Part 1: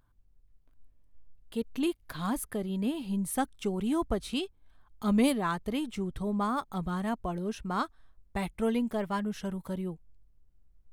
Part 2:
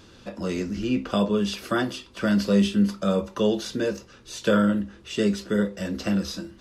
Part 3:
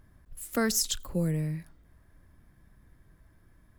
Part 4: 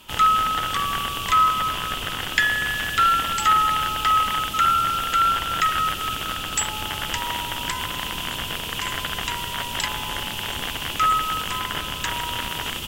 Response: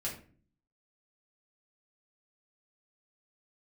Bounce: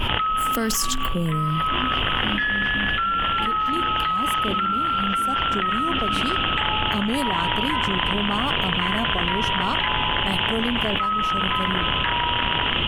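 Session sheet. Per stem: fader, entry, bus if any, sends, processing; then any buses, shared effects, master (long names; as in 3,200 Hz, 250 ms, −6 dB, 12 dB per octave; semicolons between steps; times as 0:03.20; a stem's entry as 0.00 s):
−9.5 dB, 1.90 s, no send, no processing
−11.0 dB, 0.00 s, no send, formant filter i
−5.5 dB, 0.00 s, no send, low-shelf EQ 71 Hz +10 dB; automatic gain control gain up to 7.5 dB
−8.0 dB, 0.00 s, no send, elliptic low-pass filter 3,200 Hz, stop band 40 dB; brickwall limiter −15 dBFS, peak gain reduction 10.5 dB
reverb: not used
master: envelope flattener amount 100%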